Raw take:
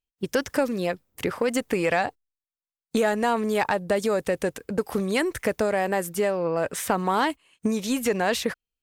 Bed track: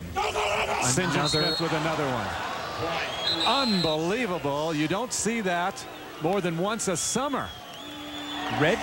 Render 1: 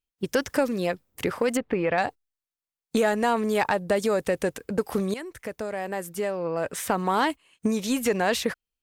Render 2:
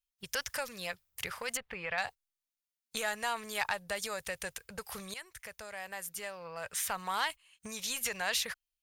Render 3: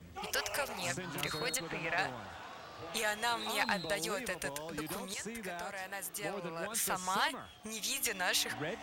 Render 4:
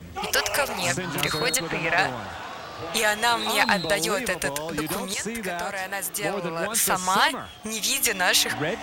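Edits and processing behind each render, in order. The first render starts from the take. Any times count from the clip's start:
0:01.57–0:01.98: high-frequency loss of the air 390 metres; 0:05.14–0:07.28: fade in, from −14 dB
guitar amp tone stack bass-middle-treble 10-0-10; notch filter 7,900 Hz, Q 18
mix in bed track −16.5 dB
level +12 dB

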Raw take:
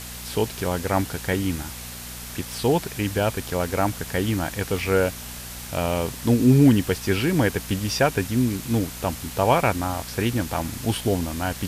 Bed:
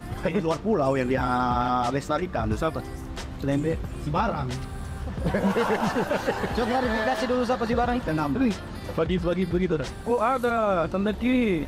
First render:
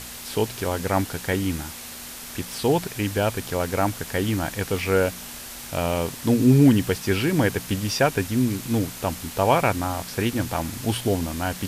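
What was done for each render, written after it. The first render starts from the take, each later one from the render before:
hum removal 60 Hz, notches 3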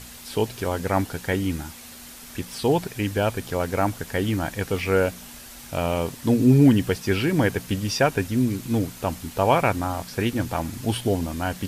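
broadband denoise 6 dB, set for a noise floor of −38 dBFS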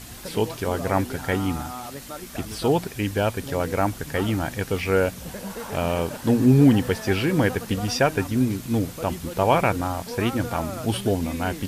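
mix in bed −11.5 dB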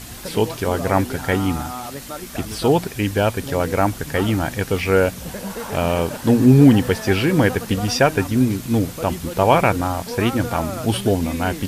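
level +4.5 dB

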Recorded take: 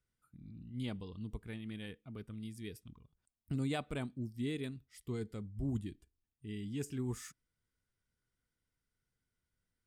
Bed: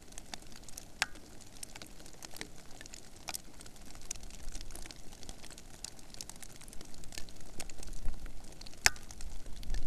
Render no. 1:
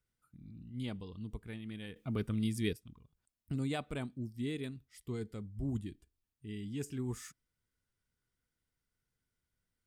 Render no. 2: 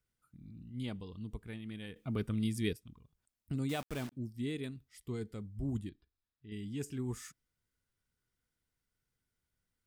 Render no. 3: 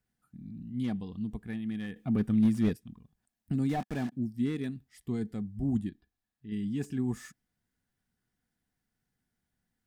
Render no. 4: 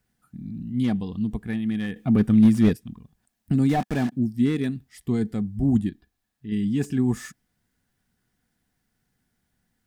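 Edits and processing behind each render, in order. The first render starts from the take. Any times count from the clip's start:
0:01.96–0:02.73: clip gain +11.5 dB
0:03.69–0:04.12: bit-depth reduction 8 bits, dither none; 0:05.89–0:06.52: Chebyshev low-pass with heavy ripple 5,300 Hz, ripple 6 dB
hollow resonant body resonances 210/740/1,700 Hz, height 11 dB, ringing for 25 ms; slew-rate limiting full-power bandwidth 27 Hz
level +9 dB

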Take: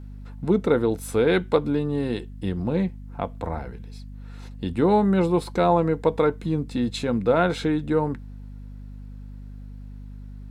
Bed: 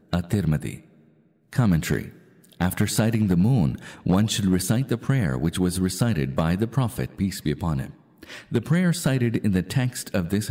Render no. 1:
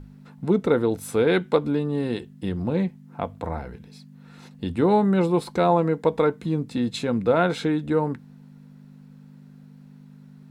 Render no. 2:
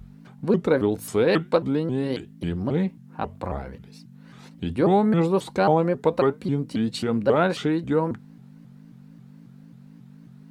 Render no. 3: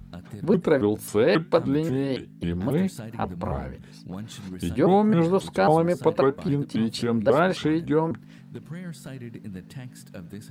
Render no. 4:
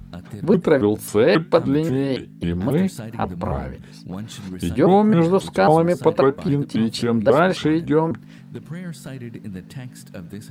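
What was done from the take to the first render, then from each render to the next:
mains-hum notches 50/100 Hz
pitch modulation by a square or saw wave saw up 3.7 Hz, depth 250 cents
mix in bed −16.5 dB
level +4.5 dB

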